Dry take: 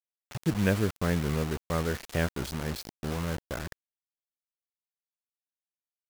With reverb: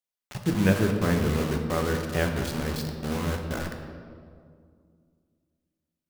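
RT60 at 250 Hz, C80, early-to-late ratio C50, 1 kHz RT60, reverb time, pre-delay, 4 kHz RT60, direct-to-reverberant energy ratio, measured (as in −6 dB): 2.9 s, 6.5 dB, 5.0 dB, 2.0 s, 2.2 s, 4 ms, 1.3 s, 3.0 dB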